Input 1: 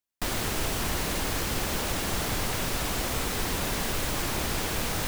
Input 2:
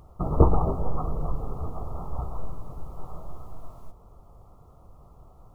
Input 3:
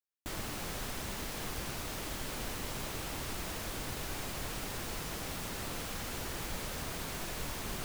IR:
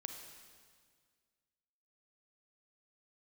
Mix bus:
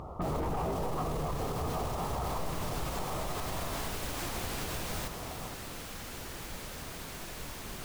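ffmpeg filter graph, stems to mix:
-filter_complex "[0:a]volume=-7.5dB[link_01];[1:a]asplit=2[link_02][link_03];[link_03]highpass=frequency=720:poles=1,volume=31dB,asoftclip=type=tanh:threshold=-3.5dB[link_04];[link_02][link_04]amix=inputs=2:normalize=0,lowpass=frequency=1200:poles=1,volume=-6dB,lowshelf=frequency=200:gain=9,volume=-8dB[link_05];[2:a]volume=-3dB[link_06];[link_01][link_05][link_06]amix=inputs=3:normalize=0,alimiter=level_in=1.5dB:limit=-24dB:level=0:latency=1:release=100,volume=-1.5dB"

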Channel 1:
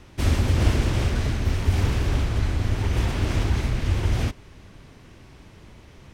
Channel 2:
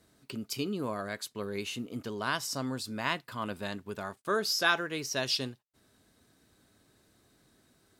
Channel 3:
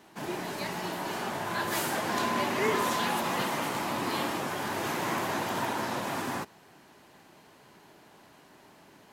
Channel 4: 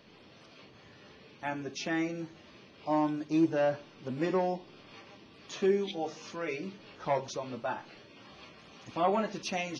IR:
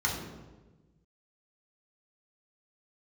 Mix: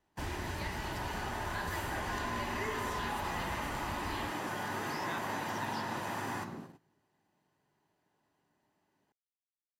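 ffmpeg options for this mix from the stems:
-filter_complex "[0:a]volume=-14.5dB[link_01];[1:a]adelay=450,volume=-13dB[link_02];[2:a]volume=-3dB,asplit=2[link_03][link_04];[link_04]volume=-13dB[link_05];[4:a]atrim=start_sample=2205[link_06];[link_05][link_06]afir=irnorm=-1:irlink=0[link_07];[link_01][link_02][link_03][link_07]amix=inputs=4:normalize=0,agate=range=-21dB:threshold=-46dB:ratio=16:detection=peak,acrossover=split=1100|3100[link_08][link_09][link_10];[link_08]acompressor=threshold=-38dB:ratio=4[link_11];[link_09]acompressor=threshold=-39dB:ratio=4[link_12];[link_10]acompressor=threshold=-50dB:ratio=4[link_13];[link_11][link_12][link_13]amix=inputs=3:normalize=0"

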